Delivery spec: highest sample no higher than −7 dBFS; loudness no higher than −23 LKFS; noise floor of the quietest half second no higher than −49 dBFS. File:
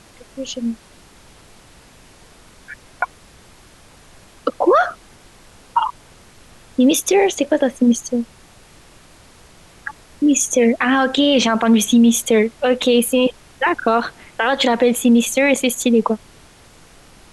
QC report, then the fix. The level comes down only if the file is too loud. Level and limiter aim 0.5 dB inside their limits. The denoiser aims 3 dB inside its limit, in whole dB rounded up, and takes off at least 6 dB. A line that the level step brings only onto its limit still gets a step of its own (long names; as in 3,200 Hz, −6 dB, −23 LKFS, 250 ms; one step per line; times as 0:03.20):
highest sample −5.5 dBFS: out of spec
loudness −17.0 LKFS: out of spec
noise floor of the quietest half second −46 dBFS: out of spec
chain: level −6.5 dB